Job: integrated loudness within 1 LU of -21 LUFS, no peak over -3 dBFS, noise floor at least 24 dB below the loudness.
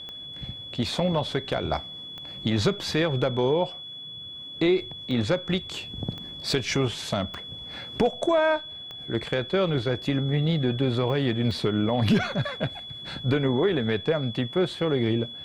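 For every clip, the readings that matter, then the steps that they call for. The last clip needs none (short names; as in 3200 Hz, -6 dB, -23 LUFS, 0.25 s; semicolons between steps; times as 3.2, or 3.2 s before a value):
clicks 8; steady tone 3400 Hz; tone level -37 dBFS; loudness -26.5 LUFS; peak -10.5 dBFS; loudness target -21.0 LUFS
-> de-click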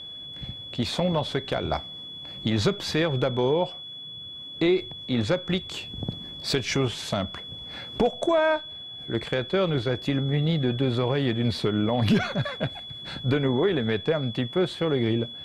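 clicks 0; steady tone 3400 Hz; tone level -37 dBFS
-> notch 3400 Hz, Q 30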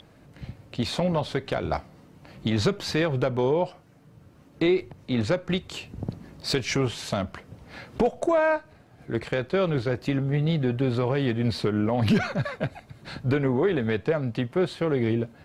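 steady tone none; loudness -26.5 LUFS; peak -11.0 dBFS; loudness target -21.0 LUFS
-> gain +5.5 dB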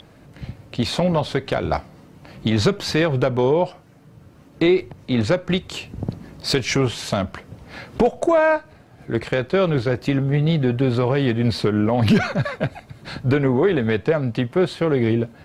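loudness -21.0 LUFS; peak -5.5 dBFS; noise floor -49 dBFS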